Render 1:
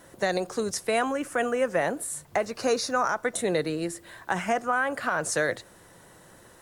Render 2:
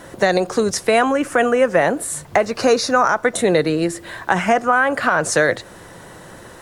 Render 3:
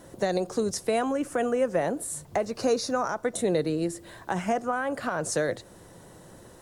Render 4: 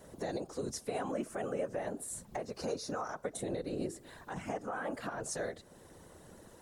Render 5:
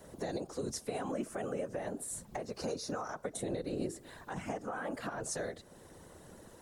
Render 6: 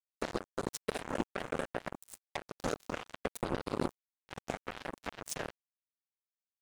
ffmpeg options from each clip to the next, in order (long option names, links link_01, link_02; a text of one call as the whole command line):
ffmpeg -i in.wav -filter_complex "[0:a]highshelf=frequency=7700:gain=-9,asplit=2[link_01][link_02];[link_02]acompressor=threshold=-33dB:ratio=6,volume=-0.5dB[link_03];[link_01][link_03]amix=inputs=2:normalize=0,volume=8dB" out.wav
ffmpeg -i in.wav -af "equalizer=frequency=1800:width_type=o:width=2.2:gain=-9,volume=-7.5dB" out.wav
ffmpeg -i in.wav -af "alimiter=limit=-22dB:level=0:latency=1:release=360,afftfilt=real='hypot(re,im)*cos(2*PI*random(0))':imag='hypot(re,im)*sin(2*PI*random(1))':win_size=512:overlap=0.75" out.wav
ffmpeg -i in.wav -filter_complex "[0:a]acrossover=split=330|3000[link_01][link_02][link_03];[link_02]acompressor=threshold=-37dB:ratio=6[link_04];[link_01][link_04][link_03]amix=inputs=3:normalize=0,volume=1dB" out.wav
ffmpeg -i in.wav -af "acrusher=bits=4:mix=0:aa=0.5,volume=4dB" out.wav